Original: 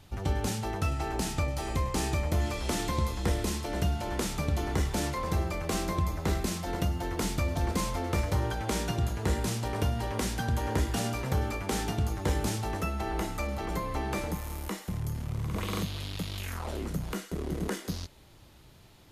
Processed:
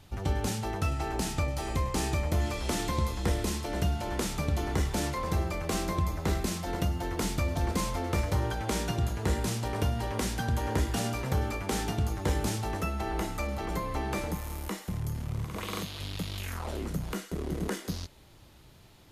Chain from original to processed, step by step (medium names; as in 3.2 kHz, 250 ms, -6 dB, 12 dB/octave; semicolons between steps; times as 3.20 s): 15.44–16.00 s: bass shelf 230 Hz -8.5 dB